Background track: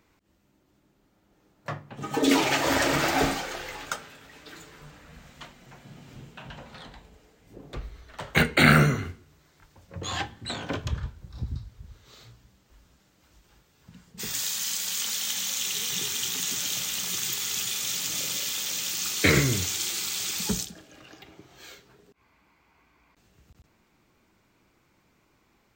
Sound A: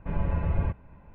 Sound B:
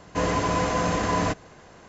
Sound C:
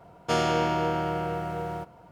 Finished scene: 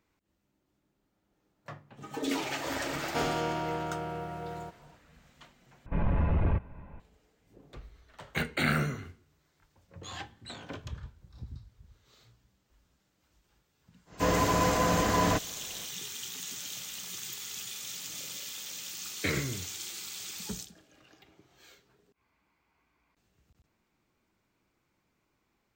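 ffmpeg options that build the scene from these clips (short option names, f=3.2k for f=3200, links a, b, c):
-filter_complex "[0:a]volume=-10.5dB[a];[1:a]aeval=exprs='0.178*sin(PI/2*2*val(0)/0.178)':c=same[b];[a]asplit=2[c][d];[c]atrim=end=5.864[e];[b]atrim=end=1.14,asetpts=PTS-STARTPTS,volume=-6.5dB[f];[d]atrim=start=6.996[g];[3:a]atrim=end=2.11,asetpts=PTS-STARTPTS,volume=-7dB,afade=t=in:d=0.004:c=hsin,afade=t=out:st=2.106:d=0.004:c=hsin,adelay=2860[h];[2:a]atrim=end=1.88,asetpts=PTS-STARTPTS,volume=-2dB,afade=t=in:d=0.1,afade=t=out:st=1.78:d=0.1,adelay=14050[i];[e][f]acrossfade=d=0.004:c1=hsin:c2=hsin[j];[j][g]acrossfade=d=0.004:c1=hsin:c2=hsin[k];[k][h][i]amix=inputs=3:normalize=0"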